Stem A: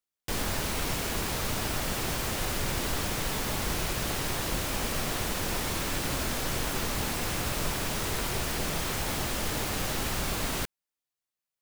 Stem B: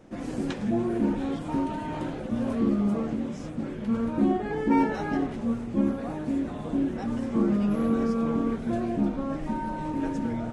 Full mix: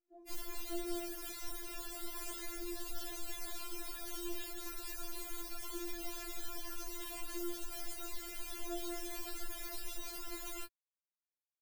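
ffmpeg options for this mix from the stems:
-filter_complex "[0:a]highshelf=f=9800:g=6.5,asoftclip=type=tanh:threshold=0.0224,volume=0.841[s0];[1:a]volume=0.188[s1];[s0][s1]amix=inputs=2:normalize=0,afftdn=nr=24:nf=-45,acrossover=split=160|3000[s2][s3][s4];[s3]acompressor=threshold=0.00447:ratio=2.5[s5];[s2][s5][s4]amix=inputs=3:normalize=0,afftfilt=real='re*4*eq(mod(b,16),0)':imag='im*4*eq(mod(b,16),0)':win_size=2048:overlap=0.75"

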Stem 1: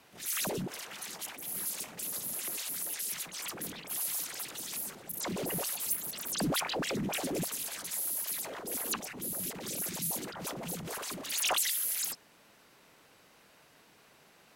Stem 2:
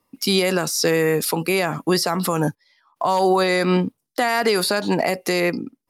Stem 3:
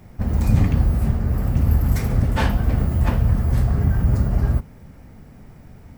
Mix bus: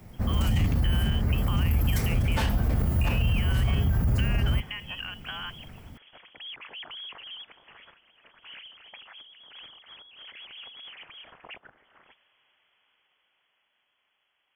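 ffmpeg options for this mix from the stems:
-filter_complex "[0:a]dynaudnorm=f=470:g=11:m=3.55,alimiter=limit=0.0841:level=0:latency=1:release=57,volume=0.211[s0];[1:a]highpass=660,volume=0.473[s1];[2:a]highshelf=f=5600:g=5.5,acrossover=split=120|3000[s2][s3][s4];[s3]acompressor=threshold=0.0794:ratio=6[s5];[s2][s5][s4]amix=inputs=3:normalize=0,volume=0.668[s6];[s0][s1]amix=inputs=2:normalize=0,lowpass=f=3000:t=q:w=0.5098,lowpass=f=3000:t=q:w=0.6013,lowpass=f=3000:t=q:w=0.9,lowpass=f=3000:t=q:w=2.563,afreqshift=-3500,acompressor=threshold=0.02:ratio=6,volume=1[s7];[s6][s7]amix=inputs=2:normalize=0,alimiter=limit=0.15:level=0:latency=1:release=14"

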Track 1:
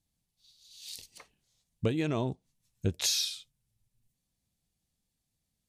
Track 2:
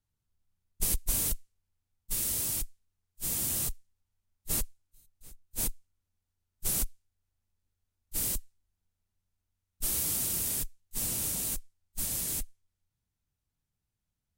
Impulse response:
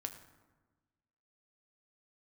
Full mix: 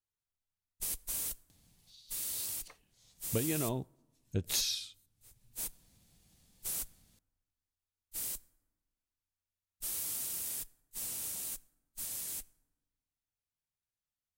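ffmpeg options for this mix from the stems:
-filter_complex "[0:a]acompressor=mode=upward:threshold=0.00562:ratio=2.5,adelay=1500,volume=0.562,asplit=2[s0][s1];[s1]volume=0.112[s2];[1:a]lowshelf=f=370:g=-12,volume=0.376,asplit=2[s3][s4];[s4]volume=0.316[s5];[2:a]atrim=start_sample=2205[s6];[s2][s5]amix=inputs=2:normalize=0[s7];[s7][s6]afir=irnorm=-1:irlink=0[s8];[s0][s3][s8]amix=inputs=3:normalize=0"

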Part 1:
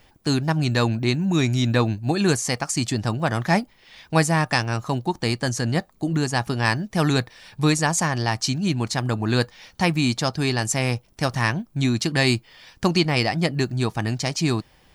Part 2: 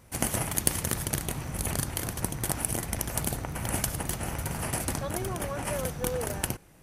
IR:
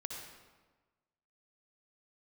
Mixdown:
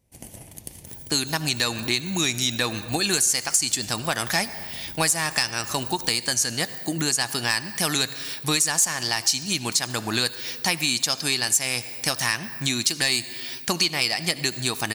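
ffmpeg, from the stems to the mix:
-filter_complex "[0:a]aemphasis=mode=production:type=bsi,asoftclip=type=tanh:threshold=0.398,adynamicequalizer=threshold=0.0126:dfrequency=1600:dqfactor=0.7:tfrequency=1600:tqfactor=0.7:attack=5:release=100:ratio=0.375:range=4:mode=boostabove:tftype=highshelf,adelay=850,volume=1.06,asplit=2[s0][s1];[s1]volume=0.299[s2];[1:a]equalizer=f=1300:t=o:w=0.88:g=-14.5,volume=0.168,asplit=2[s3][s4];[s4]volume=0.596[s5];[2:a]atrim=start_sample=2205[s6];[s2][s5]amix=inputs=2:normalize=0[s7];[s7][s6]afir=irnorm=-1:irlink=0[s8];[s0][s3][s8]amix=inputs=3:normalize=0,acompressor=threshold=0.0794:ratio=3"

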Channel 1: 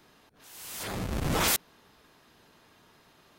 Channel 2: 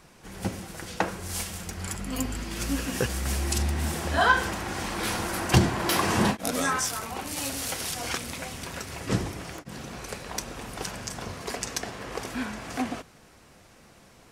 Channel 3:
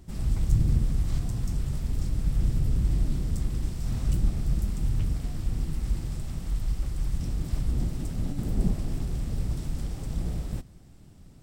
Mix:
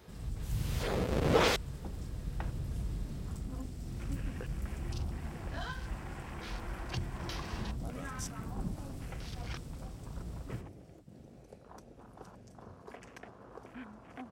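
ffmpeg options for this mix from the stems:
-filter_complex "[0:a]acrossover=split=5400[s0][s1];[s1]acompressor=threshold=0.00316:ratio=4:attack=1:release=60[s2];[s0][s2]amix=inputs=2:normalize=0,equalizer=f=470:t=o:w=0.67:g=10,volume=0.841[s3];[1:a]afwtdn=0.0158,acrossover=split=120|3000[s4][s5][s6];[s5]acompressor=threshold=0.0398:ratio=6[s7];[s4][s7][s6]amix=inputs=3:normalize=0,adelay=1400,volume=0.211[s8];[2:a]volume=0.282[s9];[s3][s8][s9]amix=inputs=3:normalize=0,highpass=44"

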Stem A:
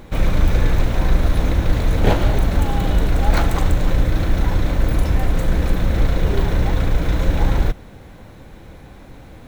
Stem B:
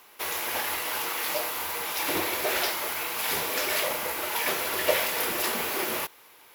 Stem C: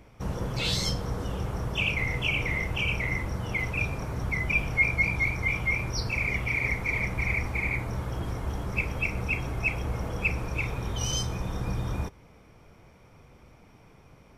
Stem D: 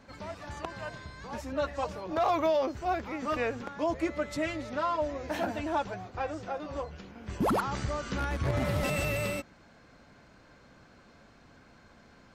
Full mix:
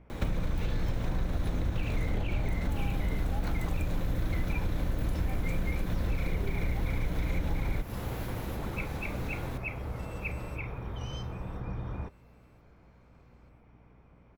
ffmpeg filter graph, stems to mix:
-filter_complex "[0:a]acrossover=split=100|270[s0][s1][s2];[s0]acompressor=threshold=0.0708:ratio=4[s3];[s1]acompressor=threshold=0.0282:ratio=4[s4];[s2]acompressor=threshold=0.0141:ratio=4[s5];[s3][s4][s5]amix=inputs=3:normalize=0,adelay=100,volume=1.26[s6];[1:a]alimiter=limit=0.075:level=0:latency=1:release=199,adelay=2500,volume=0.15,asplit=2[s7][s8];[s8]volume=0.422[s9];[2:a]lowpass=2200,aeval=exprs='val(0)+0.00224*(sin(2*PI*60*n/s)+sin(2*PI*2*60*n/s)/2+sin(2*PI*3*60*n/s)/3+sin(2*PI*4*60*n/s)/4+sin(2*PI*5*60*n/s)/5)':c=same,volume=0.501,asplit=3[s10][s11][s12];[s10]atrim=end=4.74,asetpts=PTS-STARTPTS,afade=t=out:st=4.736:d=0.004:c=hsin[s13];[s11]atrim=start=4.74:end=5.28,asetpts=PTS-STARTPTS,volume=0[s14];[s12]atrim=start=5.28,asetpts=PTS-STARTPTS,afade=t=in:d=0.004:c=hsin[s15];[s13][s14][s15]concat=n=3:v=0:a=1[s16];[3:a]alimiter=level_in=1.19:limit=0.0631:level=0:latency=1,volume=0.841,adelay=1150,volume=0.178,asplit=2[s17][s18];[s18]volume=0.188[s19];[s9][s19]amix=inputs=2:normalize=0,aecho=0:1:1012|2024|3036|4048|5060:1|0.36|0.13|0.0467|0.0168[s20];[s6][s7][s16][s17][s20]amix=inputs=5:normalize=0,acompressor=threshold=0.0501:ratio=6"

